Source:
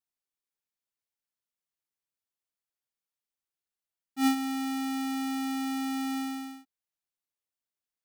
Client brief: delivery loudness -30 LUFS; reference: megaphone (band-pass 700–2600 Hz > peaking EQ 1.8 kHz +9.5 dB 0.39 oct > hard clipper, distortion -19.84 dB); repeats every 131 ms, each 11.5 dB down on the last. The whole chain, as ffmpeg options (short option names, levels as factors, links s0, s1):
-af "highpass=700,lowpass=2600,equalizer=f=1800:t=o:w=0.39:g=9.5,aecho=1:1:131|262|393:0.266|0.0718|0.0194,asoftclip=type=hard:threshold=0.0596,volume=1.78"